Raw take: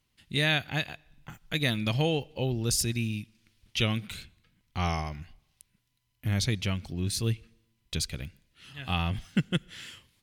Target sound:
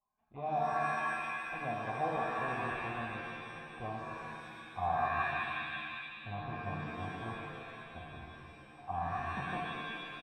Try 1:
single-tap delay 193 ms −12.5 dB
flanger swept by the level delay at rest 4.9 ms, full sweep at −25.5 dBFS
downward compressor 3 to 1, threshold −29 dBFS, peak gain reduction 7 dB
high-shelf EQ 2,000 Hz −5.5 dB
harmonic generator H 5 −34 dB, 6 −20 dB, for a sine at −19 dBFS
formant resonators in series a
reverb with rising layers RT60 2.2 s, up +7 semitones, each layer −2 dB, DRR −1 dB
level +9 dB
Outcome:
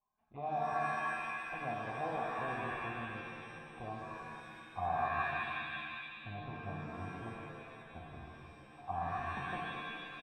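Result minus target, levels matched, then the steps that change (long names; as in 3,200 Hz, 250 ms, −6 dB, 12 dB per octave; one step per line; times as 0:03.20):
downward compressor: peak gain reduction +7 dB
remove: downward compressor 3 to 1, threshold −29 dBFS, peak gain reduction 7 dB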